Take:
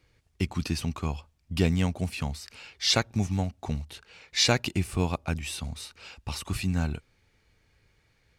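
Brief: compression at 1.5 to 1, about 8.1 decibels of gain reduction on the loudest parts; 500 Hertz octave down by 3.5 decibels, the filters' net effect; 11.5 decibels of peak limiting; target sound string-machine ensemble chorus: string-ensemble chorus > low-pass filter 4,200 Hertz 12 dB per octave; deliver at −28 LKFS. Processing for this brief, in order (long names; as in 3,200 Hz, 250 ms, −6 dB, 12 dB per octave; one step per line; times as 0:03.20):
parametric band 500 Hz −4.5 dB
downward compressor 1.5 to 1, threshold −42 dBFS
brickwall limiter −29.5 dBFS
string-ensemble chorus
low-pass filter 4,200 Hz 12 dB per octave
level +16.5 dB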